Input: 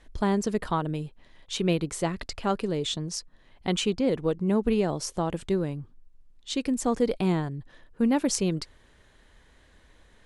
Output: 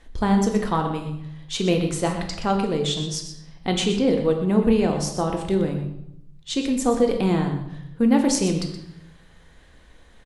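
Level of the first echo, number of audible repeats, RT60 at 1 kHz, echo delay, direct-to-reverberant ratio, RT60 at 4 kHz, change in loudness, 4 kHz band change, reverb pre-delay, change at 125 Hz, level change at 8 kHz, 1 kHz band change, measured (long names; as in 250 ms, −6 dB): −11.0 dB, 1, 0.75 s, 123 ms, 3.0 dB, 0.70 s, +5.0 dB, +5.0 dB, 3 ms, +5.5 dB, +4.0 dB, +5.5 dB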